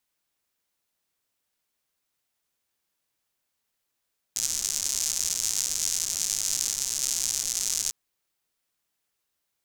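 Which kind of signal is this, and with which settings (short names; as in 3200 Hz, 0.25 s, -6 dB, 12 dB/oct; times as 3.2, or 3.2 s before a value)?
rain from filtered ticks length 3.55 s, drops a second 170, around 6500 Hz, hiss -20 dB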